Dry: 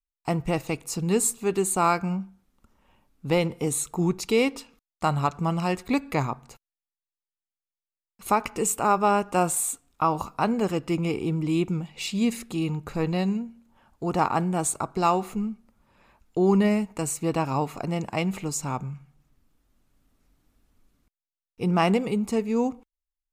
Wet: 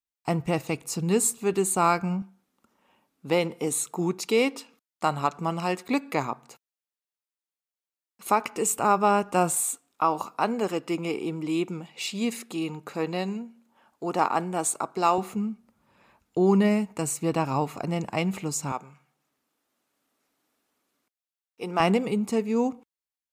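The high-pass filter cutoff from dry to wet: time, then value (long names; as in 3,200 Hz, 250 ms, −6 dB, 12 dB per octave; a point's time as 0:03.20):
91 Hz
from 0:02.22 220 Hz
from 0:08.73 98 Hz
from 0:09.61 270 Hz
from 0:15.18 99 Hz
from 0:18.72 400 Hz
from 0:21.80 130 Hz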